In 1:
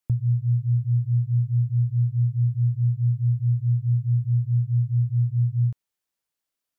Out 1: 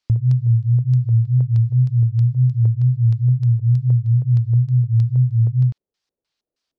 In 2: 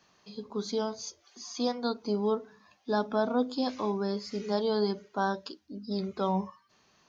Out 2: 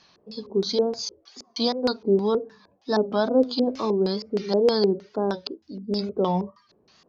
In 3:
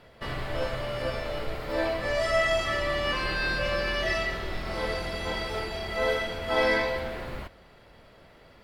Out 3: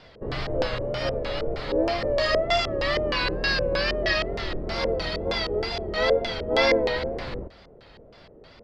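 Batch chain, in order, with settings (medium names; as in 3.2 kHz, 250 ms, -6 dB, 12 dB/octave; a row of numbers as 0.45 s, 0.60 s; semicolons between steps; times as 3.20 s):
LFO low-pass square 3.2 Hz 460–4700 Hz; wow and flutter 89 cents; peak normalisation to -9 dBFS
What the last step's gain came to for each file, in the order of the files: +6.0 dB, +4.5 dB, +2.5 dB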